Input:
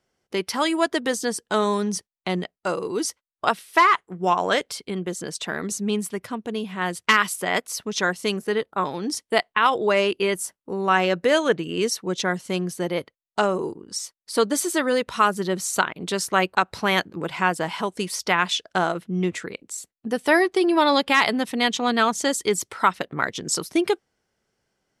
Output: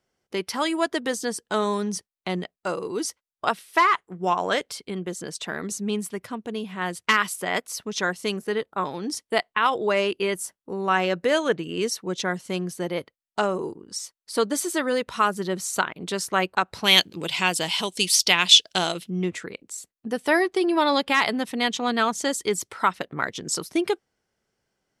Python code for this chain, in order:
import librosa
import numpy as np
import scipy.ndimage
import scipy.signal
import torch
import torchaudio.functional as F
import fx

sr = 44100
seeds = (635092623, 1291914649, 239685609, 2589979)

y = fx.high_shelf_res(x, sr, hz=2200.0, db=12.0, q=1.5, at=(16.84, 19.1))
y = y * librosa.db_to_amplitude(-2.5)